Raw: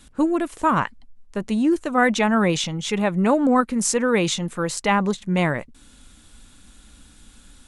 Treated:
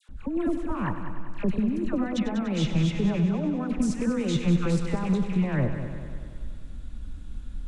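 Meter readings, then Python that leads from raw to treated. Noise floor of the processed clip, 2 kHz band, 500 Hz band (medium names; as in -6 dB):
-40 dBFS, -13.5 dB, -9.0 dB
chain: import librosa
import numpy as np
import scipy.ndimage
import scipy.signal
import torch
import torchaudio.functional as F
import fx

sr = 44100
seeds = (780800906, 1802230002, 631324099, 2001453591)

p1 = fx.rattle_buzz(x, sr, strikes_db=-28.0, level_db=-21.0)
p2 = fx.over_compress(p1, sr, threshold_db=-24.0, ratio=-1.0)
p3 = fx.riaa(p2, sr, side='playback')
p4 = fx.dispersion(p3, sr, late='lows', ms=88.0, hz=1200.0)
p5 = p4 + fx.echo_heads(p4, sr, ms=97, heads='first and second', feedback_pct=61, wet_db=-12, dry=0)
y = F.gain(torch.from_numpy(p5), -8.0).numpy()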